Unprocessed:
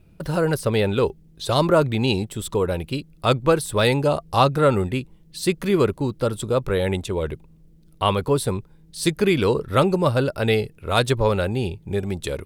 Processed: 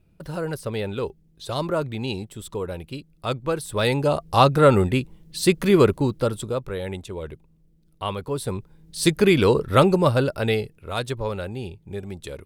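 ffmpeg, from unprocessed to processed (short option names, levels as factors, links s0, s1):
-af "volume=4.47,afade=t=in:st=3.49:d=1.25:silence=0.298538,afade=t=out:st=5.94:d=0.71:silence=0.281838,afade=t=in:st=8.31:d=0.69:silence=0.316228,afade=t=out:st=9.87:d=1.08:silence=0.316228"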